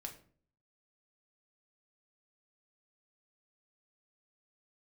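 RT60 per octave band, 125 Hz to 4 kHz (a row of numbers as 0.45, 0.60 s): 0.75, 0.65, 0.55, 0.45, 0.40, 0.30 s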